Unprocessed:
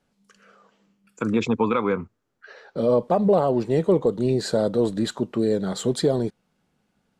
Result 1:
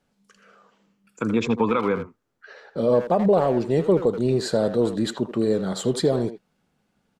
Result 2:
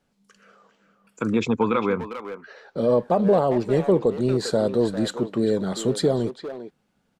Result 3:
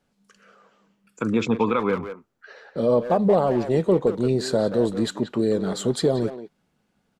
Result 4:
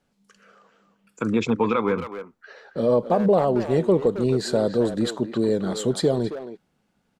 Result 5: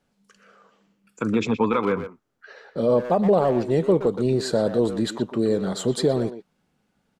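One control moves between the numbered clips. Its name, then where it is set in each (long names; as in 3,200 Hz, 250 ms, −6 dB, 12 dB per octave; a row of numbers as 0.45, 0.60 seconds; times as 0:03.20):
far-end echo of a speakerphone, delay time: 80, 400, 180, 270, 120 milliseconds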